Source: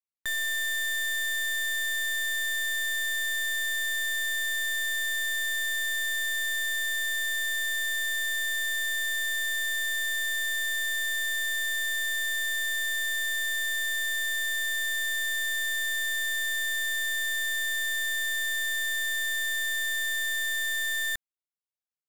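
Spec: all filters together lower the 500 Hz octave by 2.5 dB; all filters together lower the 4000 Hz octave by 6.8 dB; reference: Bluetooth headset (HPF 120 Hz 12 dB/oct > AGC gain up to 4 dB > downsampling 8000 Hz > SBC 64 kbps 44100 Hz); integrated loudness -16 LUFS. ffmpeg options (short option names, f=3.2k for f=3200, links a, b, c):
-af "highpass=120,equalizer=f=500:t=o:g=-3.5,equalizer=f=4k:t=o:g=-7.5,dynaudnorm=m=4dB,aresample=8000,aresample=44100,volume=12.5dB" -ar 44100 -c:a sbc -b:a 64k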